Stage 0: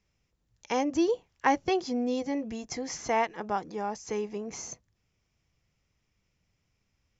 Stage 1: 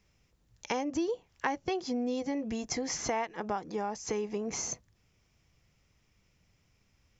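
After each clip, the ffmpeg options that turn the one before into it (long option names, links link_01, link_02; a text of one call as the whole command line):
ffmpeg -i in.wav -af "acompressor=threshold=-37dB:ratio=4,volume=6dB" out.wav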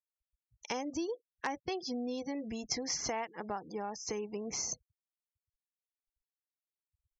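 ffmpeg -i in.wav -af "afftfilt=real='re*gte(hypot(re,im),0.00562)':imag='im*gte(hypot(re,im),0.00562)':win_size=1024:overlap=0.75,aeval=exprs='0.211*(cos(1*acos(clip(val(0)/0.211,-1,1)))-cos(1*PI/2))+0.0335*(cos(4*acos(clip(val(0)/0.211,-1,1)))-cos(4*PI/2))+0.0335*(cos(6*acos(clip(val(0)/0.211,-1,1)))-cos(6*PI/2))+0.0106*(cos(8*acos(clip(val(0)/0.211,-1,1)))-cos(8*PI/2))':channel_layout=same,lowpass=frequency=5400:width_type=q:width=2.4,volume=-5dB" out.wav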